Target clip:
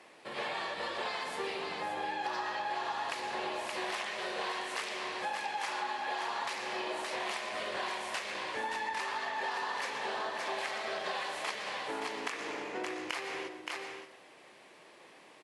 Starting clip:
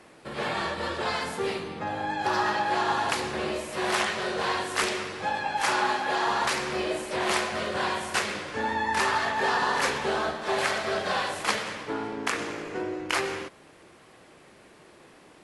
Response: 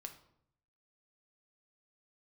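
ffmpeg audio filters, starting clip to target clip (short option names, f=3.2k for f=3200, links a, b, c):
-filter_complex "[0:a]highpass=f=1.1k:p=1,equalizer=f=1.4k:w=3:g=-7,aecho=1:1:571:0.398,asplit=2[a][b];[1:a]atrim=start_sample=2205,adelay=116[c];[b][c]afir=irnorm=-1:irlink=0,volume=-9dB[d];[a][d]amix=inputs=2:normalize=0,acompressor=threshold=-35dB:ratio=6,highshelf=f=4.6k:g=-10.5,volume=3dB"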